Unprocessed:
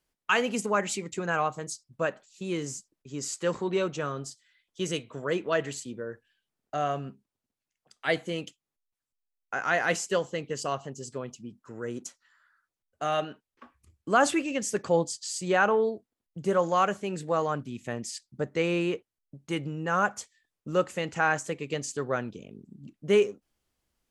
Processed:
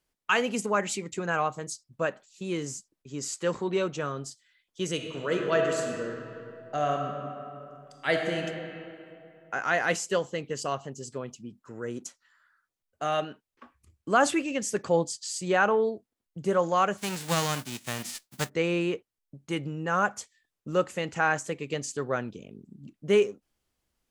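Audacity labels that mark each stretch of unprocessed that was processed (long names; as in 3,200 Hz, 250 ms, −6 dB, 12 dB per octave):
4.930000	8.420000	thrown reverb, RT60 2.7 s, DRR 2 dB
16.970000	18.480000	spectral envelope flattened exponent 0.3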